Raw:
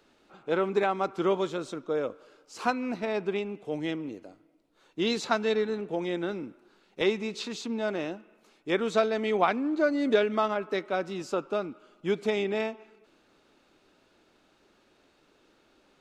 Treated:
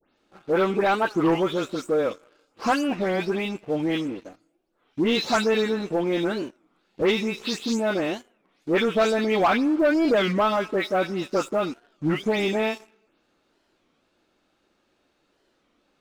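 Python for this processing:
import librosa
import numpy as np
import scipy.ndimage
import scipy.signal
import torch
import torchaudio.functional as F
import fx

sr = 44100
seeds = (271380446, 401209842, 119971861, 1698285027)

y = fx.spec_delay(x, sr, highs='late', ms=177)
y = fx.leveller(y, sr, passes=2)
y = fx.record_warp(y, sr, rpm=33.33, depth_cents=250.0)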